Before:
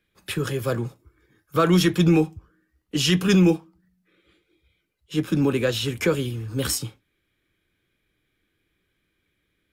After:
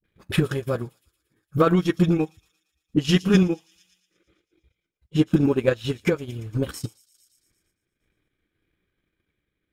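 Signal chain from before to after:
high-shelf EQ 3,000 Hz −9 dB
all-pass dispersion highs, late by 41 ms, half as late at 320 Hz
transient designer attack +9 dB, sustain −11 dB
delay with a high-pass on its return 115 ms, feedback 64%, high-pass 5,400 Hz, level −12 dB
sample-and-hold tremolo

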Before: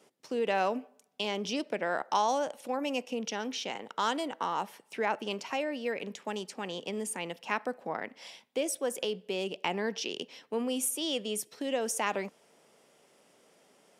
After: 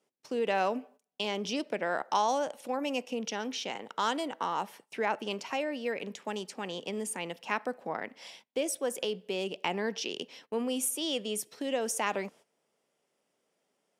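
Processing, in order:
noise gate −54 dBFS, range −15 dB

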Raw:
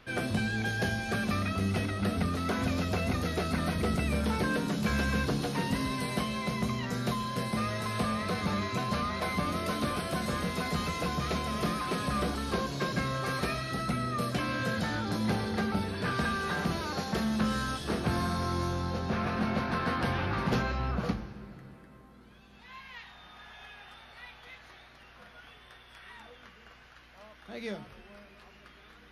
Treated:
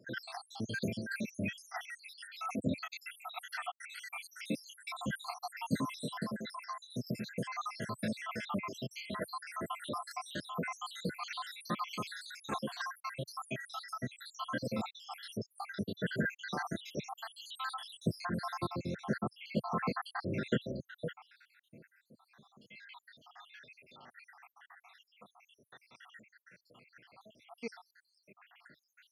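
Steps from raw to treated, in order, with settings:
time-frequency cells dropped at random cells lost 81%
high-pass filter 120 Hz 24 dB per octave

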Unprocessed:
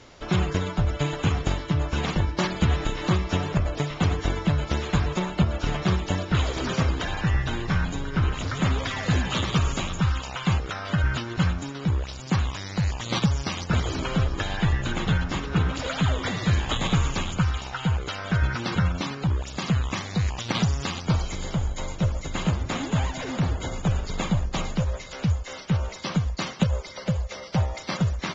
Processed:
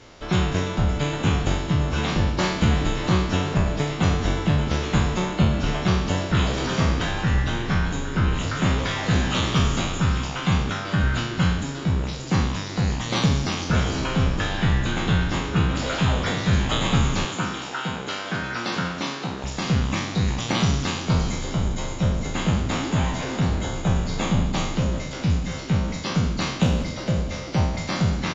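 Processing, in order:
peak hold with a decay on every bin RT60 0.83 s
0:17.25–0:19.44: high-pass filter 230 Hz 12 dB per octave
echo with shifted repeats 188 ms, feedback 62%, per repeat +78 Hz, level −16 dB

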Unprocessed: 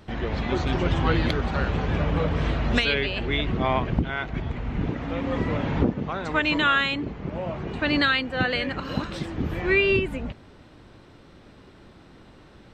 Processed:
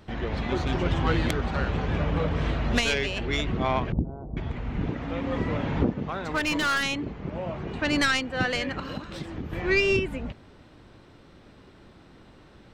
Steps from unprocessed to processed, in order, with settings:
stylus tracing distortion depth 0.08 ms
0:03.92–0:04.37: Bessel low-pass filter 510 Hz, order 8
0:06.06–0:06.83: hard clipping −19 dBFS, distortion −20 dB
0:08.84–0:09.53: downward compressor 6 to 1, threshold −29 dBFS, peak gain reduction 9.5 dB
level −2 dB

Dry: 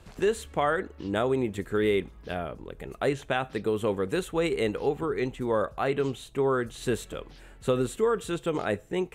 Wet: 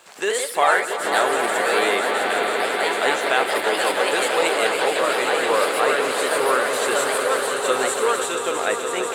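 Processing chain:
high-pass filter 670 Hz 12 dB per octave
parametric band 7,900 Hz +6.5 dB 0.39 octaves
echo that builds up and dies away 164 ms, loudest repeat 5, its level −9 dB
bit reduction 12 bits
delay with pitch and tempo change per echo 104 ms, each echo +2 semitones, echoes 2
level +9 dB

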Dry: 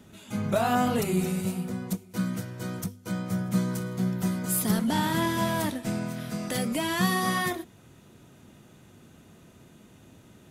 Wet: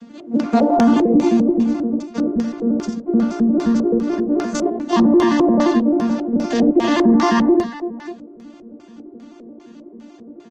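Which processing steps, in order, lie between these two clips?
vocoder with an arpeggio as carrier major triad, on A#3, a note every 87 ms
reverb reduction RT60 0.52 s
dynamic equaliser 170 Hz, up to +3 dB, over −43 dBFS, Q 2.9
0:03.85–0:04.93: compressor whose output falls as the input rises −37 dBFS, ratio −1
multi-tap delay 53/65/88/338/587 ms −9/−11.5/−7/−18/−16.5 dB
auto-filter low-pass square 2.5 Hz 470–5,800 Hz
boost into a limiter +17.5 dB
level −5 dB
Opus 16 kbit/s 48,000 Hz

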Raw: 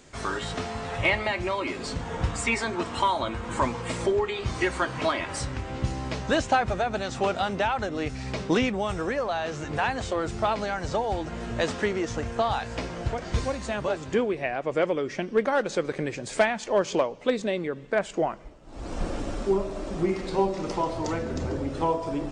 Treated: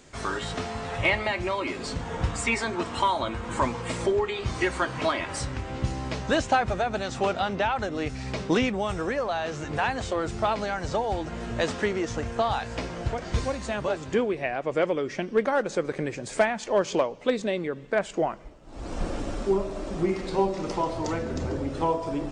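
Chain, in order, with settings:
0:07.33–0:07.76: low-pass filter 6,000 Hz 12 dB per octave
0:15.50–0:16.58: dynamic equaliser 3,600 Hz, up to −5 dB, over −43 dBFS, Q 1.1

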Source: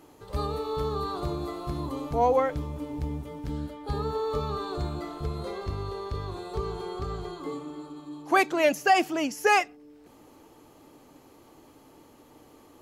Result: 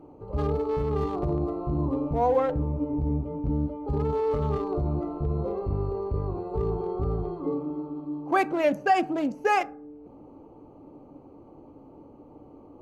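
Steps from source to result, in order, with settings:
adaptive Wiener filter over 25 samples
high-shelf EQ 2,100 Hz −10 dB
in parallel at −2 dB: compressor whose output falls as the input rises −32 dBFS, ratio −0.5
on the sum: convolution reverb RT60 0.45 s, pre-delay 3 ms, DRR 13.5 dB

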